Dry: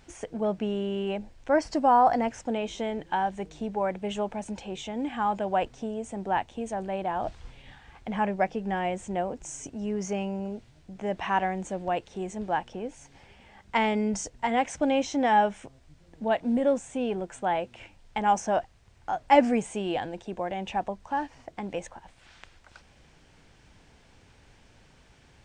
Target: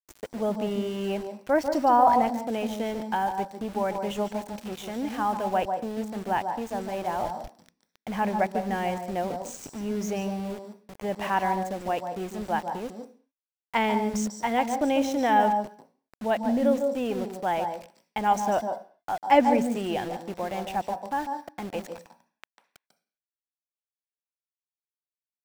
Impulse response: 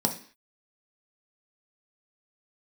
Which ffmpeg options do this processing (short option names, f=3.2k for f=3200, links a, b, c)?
-filter_complex "[0:a]aeval=exprs='val(0)*gte(abs(val(0)),0.0119)':c=same,asplit=2[a][b];[b]highpass=f=350:p=1[c];[1:a]atrim=start_sample=2205,adelay=145[d];[c][d]afir=irnorm=-1:irlink=0,volume=-17dB[e];[a][e]amix=inputs=2:normalize=0"